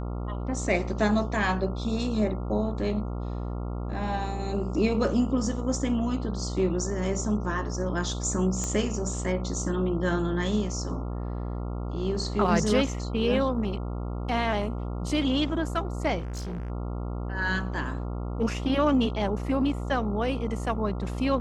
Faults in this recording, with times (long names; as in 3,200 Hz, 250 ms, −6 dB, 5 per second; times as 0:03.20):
mains buzz 60 Hz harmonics 23 −32 dBFS
0:08.64: click −19 dBFS
0:16.18–0:16.70: clipping −30.5 dBFS